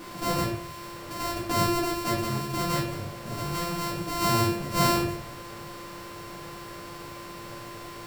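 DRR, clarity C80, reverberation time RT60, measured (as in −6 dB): −6.5 dB, 10.5 dB, 0.55 s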